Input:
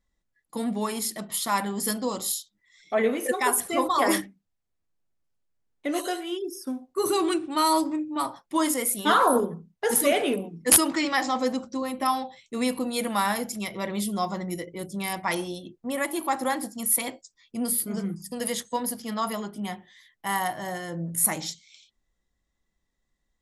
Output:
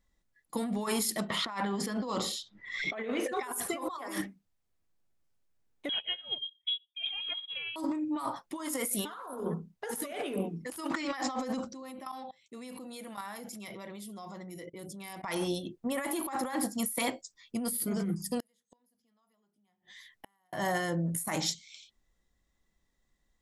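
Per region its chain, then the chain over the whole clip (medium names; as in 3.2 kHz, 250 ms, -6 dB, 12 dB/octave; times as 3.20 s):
1.30–3.43 s: low-pass 4.4 kHz + three bands compressed up and down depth 100%
5.89–7.76 s: bass shelf 280 Hz +10 dB + frequency inversion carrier 3.6 kHz + upward expansion 2.5:1, over -37 dBFS
11.73–15.24 s: high-pass 110 Hz 6 dB/octave + level held to a coarse grid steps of 23 dB
18.40–20.53 s: compression, threshold -35 dBFS + inverted gate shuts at -37 dBFS, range -38 dB
whole clip: dynamic bell 1.2 kHz, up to +4 dB, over -38 dBFS, Q 1.1; compressor with a negative ratio -31 dBFS, ratio -1; trim -3.5 dB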